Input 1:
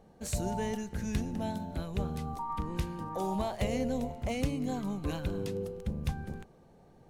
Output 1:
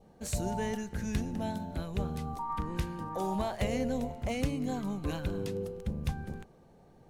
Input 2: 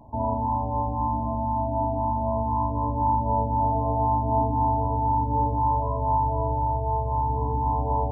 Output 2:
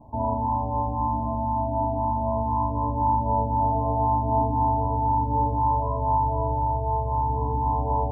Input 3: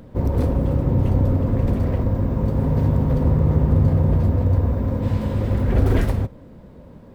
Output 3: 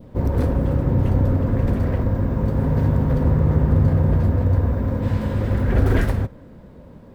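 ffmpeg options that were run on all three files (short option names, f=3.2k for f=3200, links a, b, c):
-af "adynamicequalizer=threshold=0.00447:dfrequency=1600:dqfactor=2.4:tfrequency=1600:tqfactor=2.4:attack=5:release=100:ratio=0.375:range=3:mode=boostabove:tftype=bell"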